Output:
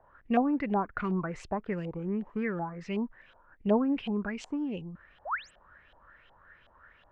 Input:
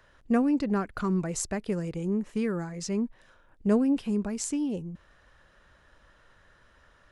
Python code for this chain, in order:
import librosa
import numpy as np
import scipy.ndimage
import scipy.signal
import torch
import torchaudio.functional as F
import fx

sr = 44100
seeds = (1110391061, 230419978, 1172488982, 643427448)

y = fx.spec_paint(x, sr, seeds[0], shape='rise', start_s=5.25, length_s=0.26, low_hz=520.0, high_hz=9000.0, level_db=-38.0)
y = fx.filter_lfo_lowpass(y, sr, shape='saw_up', hz=2.7, low_hz=730.0, high_hz=3300.0, q=5.9)
y = y * librosa.db_to_amplitude(-4.0)